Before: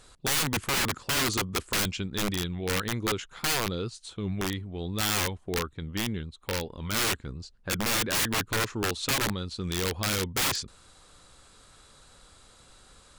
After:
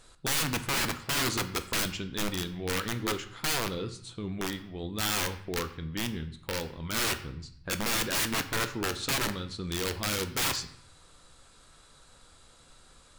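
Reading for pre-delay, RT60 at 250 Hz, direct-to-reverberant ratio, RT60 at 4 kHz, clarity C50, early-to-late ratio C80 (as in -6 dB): 3 ms, 0.85 s, 8.0 dB, 0.55 s, 13.5 dB, 15.5 dB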